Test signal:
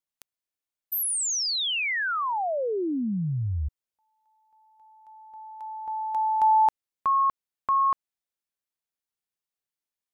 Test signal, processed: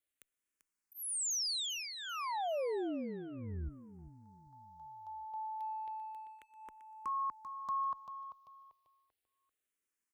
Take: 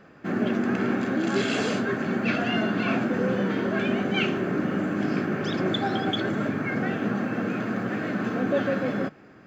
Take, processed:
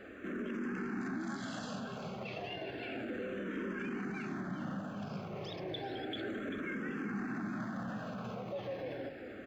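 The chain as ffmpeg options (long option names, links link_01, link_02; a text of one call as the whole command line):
ffmpeg -i in.wav -filter_complex "[0:a]acompressor=threshold=-38dB:ratio=8:attack=0.29:release=26:detection=rms,aecho=1:1:391|782|1173|1564:0.316|0.12|0.0457|0.0174,asplit=2[link_01][link_02];[link_02]afreqshift=-0.32[link_03];[link_01][link_03]amix=inputs=2:normalize=1,volume=4dB" out.wav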